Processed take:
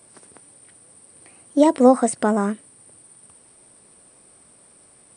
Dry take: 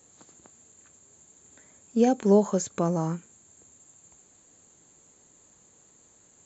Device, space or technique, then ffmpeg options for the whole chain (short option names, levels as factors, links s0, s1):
nightcore: -af "asetrate=55125,aresample=44100,volume=2.11"